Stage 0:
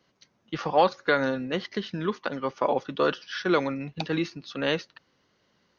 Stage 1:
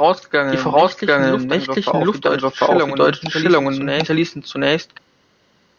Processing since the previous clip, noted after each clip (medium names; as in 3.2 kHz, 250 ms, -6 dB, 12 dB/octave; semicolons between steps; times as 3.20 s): reverse echo 744 ms -4 dB; loudness maximiser +11.5 dB; trim -1 dB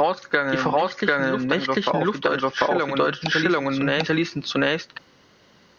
dynamic bell 1.6 kHz, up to +5 dB, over -33 dBFS, Q 1.5; compression, threshold -21 dBFS, peak gain reduction 13.5 dB; trim +3 dB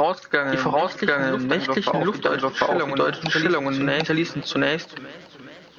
modulated delay 420 ms, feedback 65%, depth 131 cents, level -19.5 dB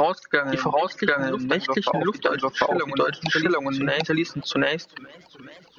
reverb removal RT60 1.1 s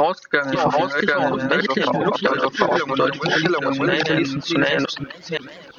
chunks repeated in reverse 336 ms, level -2.5 dB; in parallel at 0 dB: gain riding within 5 dB; on the sum: trim -4 dB